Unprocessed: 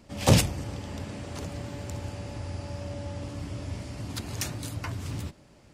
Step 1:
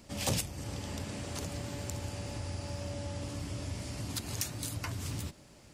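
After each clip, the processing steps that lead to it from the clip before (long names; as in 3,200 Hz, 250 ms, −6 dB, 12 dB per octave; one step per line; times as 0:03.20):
high-shelf EQ 4,000 Hz +9 dB
downward compressor 2.5 to 1, threshold −33 dBFS, peak gain reduction 14 dB
level −1.5 dB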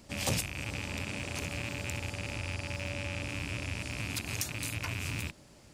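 loose part that buzzes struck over −41 dBFS, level −26 dBFS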